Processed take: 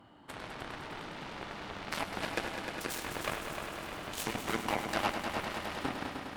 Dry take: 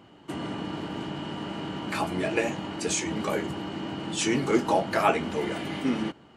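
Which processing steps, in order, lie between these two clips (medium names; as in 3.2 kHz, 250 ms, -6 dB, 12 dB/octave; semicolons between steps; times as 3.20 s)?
fifteen-band graphic EQ 160 Hz -8 dB, 400 Hz -9 dB, 2.5 kHz -7 dB, 6.3 kHz -11 dB; compression 5:1, threshold -33 dBFS, peak gain reduction 13 dB; Chebyshev shaper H 7 -13 dB, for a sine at -20.5 dBFS; multi-head delay 102 ms, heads all three, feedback 74%, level -11.5 dB; trim +3.5 dB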